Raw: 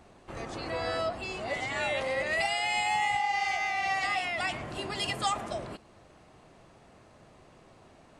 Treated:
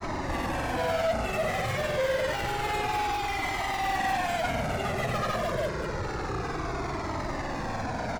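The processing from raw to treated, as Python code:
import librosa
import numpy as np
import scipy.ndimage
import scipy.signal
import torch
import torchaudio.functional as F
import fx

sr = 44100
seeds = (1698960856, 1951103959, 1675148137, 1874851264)

p1 = fx.delta_mod(x, sr, bps=16000, step_db=-40.0)
p2 = scipy.signal.sosfilt(scipy.signal.butter(2, 2000.0, 'lowpass', fs=sr, output='sos'), p1)
p3 = fx.fuzz(p2, sr, gain_db=47.0, gate_db=-53.0)
p4 = p2 + F.gain(torch.from_numpy(p3), -3.0).numpy()
p5 = fx.granulator(p4, sr, seeds[0], grain_ms=100.0, per_s=20.0, spray_ms=100.0, spread_st=0)
p6 = fx.comb_cascade(p5, sr, direction='falling', hz=0.28)
y = F.gain(torch.from_numpy(p6), -6.5).numpy()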